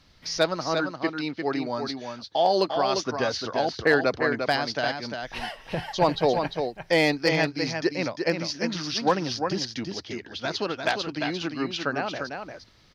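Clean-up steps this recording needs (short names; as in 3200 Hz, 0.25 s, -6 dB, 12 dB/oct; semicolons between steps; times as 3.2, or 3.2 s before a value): clip repair -10.5 dBFS; inverse comb 0.349 s -6 dB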